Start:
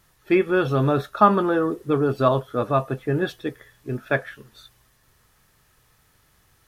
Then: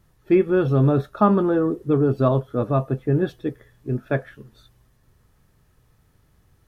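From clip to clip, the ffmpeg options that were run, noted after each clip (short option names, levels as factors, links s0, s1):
-af "tiltshelf=f=640:g=7,volume=0.841"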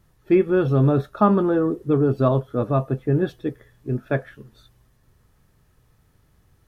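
-af anull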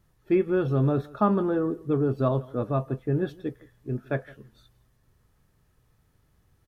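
-af "aecho=1:1:166:0.075,volume=0.531"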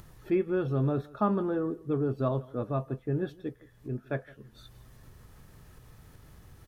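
-af "acompressor=mode=upward:threshold=0.0251:ratio=2.5,volume=0.596"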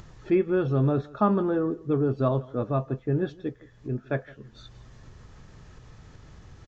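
-af "aresample=16000,aresample=44100,volume=1.68"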